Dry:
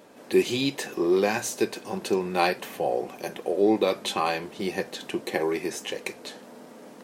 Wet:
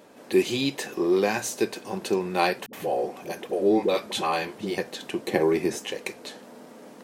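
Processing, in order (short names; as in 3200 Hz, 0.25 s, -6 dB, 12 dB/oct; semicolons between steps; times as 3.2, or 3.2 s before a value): 2.66–4.78 dispersion highs, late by 71 ms, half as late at 330 Hz; 5.28–5.79 low shelf 410 Hz +9 dB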